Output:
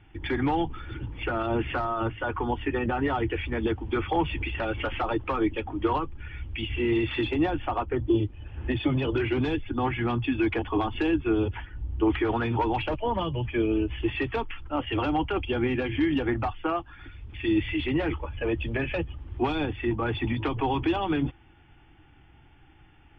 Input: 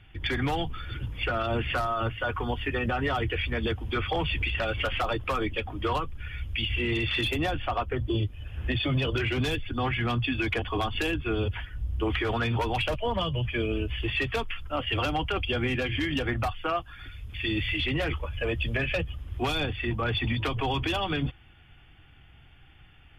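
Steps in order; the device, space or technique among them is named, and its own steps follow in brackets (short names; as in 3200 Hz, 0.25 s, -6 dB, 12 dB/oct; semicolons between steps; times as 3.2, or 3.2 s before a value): inside a cardboard box (LPF 2700 Hz 12 dB/oct; small resonant body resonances 320/860 Hz, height 10 dB, ringing for 25 ms); gain -2 dB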